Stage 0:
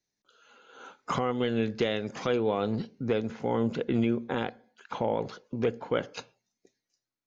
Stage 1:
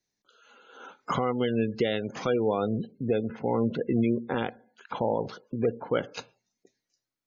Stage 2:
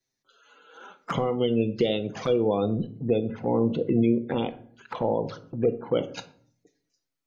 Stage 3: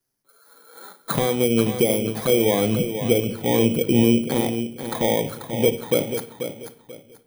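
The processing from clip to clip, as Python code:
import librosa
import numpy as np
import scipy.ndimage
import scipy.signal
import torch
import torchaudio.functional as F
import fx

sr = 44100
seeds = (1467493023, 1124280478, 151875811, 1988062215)

y1 = fx.spec_gate(x, sr, threshold_db=-25, keep='strong')
y1 = y1 * 10.0 ** (1.5 / 20.0)
y2 = fx.env_flanger(y1, sr, rest_ms=7.7, full_db=-25.0)
y2 = fx.room_shoebox(y2, sr, seeds[0], volume_m3=650.0, walls='furnished', distance_m=0.7)
y2 = y2 * 10.0 ** (3.0 / 20.0)
y3 = fx.bit_reversed(y2, sr, seeds[1], block=16)
y3 = fx.echo_feedback(y3, sr, ms=487, feedback_pct=27, wet_db=-9.0)
y3 = y3 * 10.0 ** (4.5 / 20.0)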